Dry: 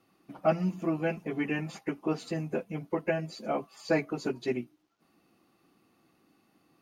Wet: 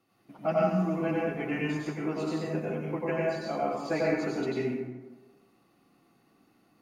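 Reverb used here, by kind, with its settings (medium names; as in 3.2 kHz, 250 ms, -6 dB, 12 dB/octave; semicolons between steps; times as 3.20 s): plate-style reverb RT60 1.2 s, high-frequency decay 0.5×, pre-delay 80 ms, DRR -5 dB; trim -4.5 dB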